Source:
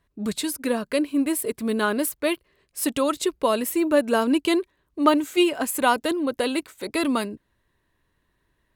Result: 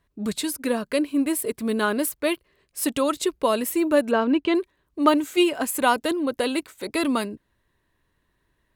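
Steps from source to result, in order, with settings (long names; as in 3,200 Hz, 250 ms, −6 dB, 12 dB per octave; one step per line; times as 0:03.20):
0:04.11–0:04.55: low-pass filter 2,900 Hz 12 dB per octave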